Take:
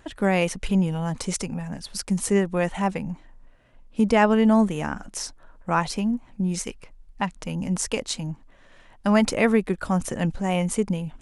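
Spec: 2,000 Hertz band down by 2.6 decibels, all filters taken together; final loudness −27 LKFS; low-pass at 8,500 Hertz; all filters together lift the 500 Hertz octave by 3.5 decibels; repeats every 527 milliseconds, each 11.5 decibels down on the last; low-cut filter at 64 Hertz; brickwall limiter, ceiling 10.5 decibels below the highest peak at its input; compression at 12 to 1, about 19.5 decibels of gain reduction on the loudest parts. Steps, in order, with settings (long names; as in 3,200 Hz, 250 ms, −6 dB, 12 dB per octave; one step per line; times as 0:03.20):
high-pass filter 64 Hz
low-pass filter 8,500 Hz
parametric band 500 Hz +4.5 dB
parametric band 2,000 Hz −3.5 dB
downward compressor 12 to 1, threshold −32 dBFS
brickwall limiter −28 dBFS
repeating echo 527 ms, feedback 27%, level −11.5 dB
level +11.5 dB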